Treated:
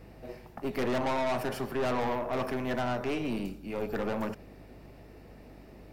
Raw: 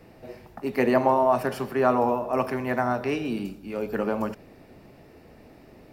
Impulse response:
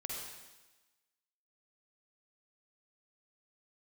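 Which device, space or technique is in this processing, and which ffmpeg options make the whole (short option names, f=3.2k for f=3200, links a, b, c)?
valve amplifier with mains hum: -af "aeval=exprs='(tanh(22.4*val(0)+0.5)-tanh(0.5))/22.4':c=same,aeval=exprs='val(0)+0.00224*(sin(2*PI*50*n/s)+sin(2*PI*2*50*n/s)/2+sin(2*PI*3*50*n/s)/3+sin(2*PI*4*50*n/s)/4+sin(2*PI*5*50*n/s)/5)':c=same"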